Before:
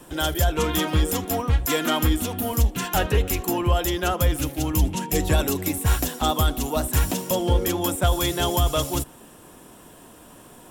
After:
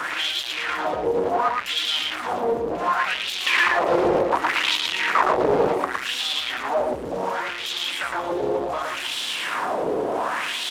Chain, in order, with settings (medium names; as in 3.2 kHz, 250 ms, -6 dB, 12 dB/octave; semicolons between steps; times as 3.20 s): one-bit comparator; 3.46–5.92 s: small resonant body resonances 370/1900 Hz, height 13 dB, ringing for 30 ms; integer overflow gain 14 dB; wah-wah 0.68 Hz 440–3600 Hz, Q 4; delay 113 ms -3.5 dB; loudspeaker Doppler distortion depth 0.42 ms; trim +8.5 dB